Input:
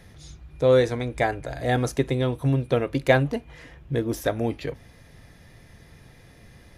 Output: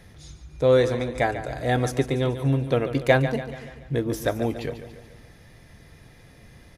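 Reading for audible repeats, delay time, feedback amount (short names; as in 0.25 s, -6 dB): 5, 0.143 s, 52%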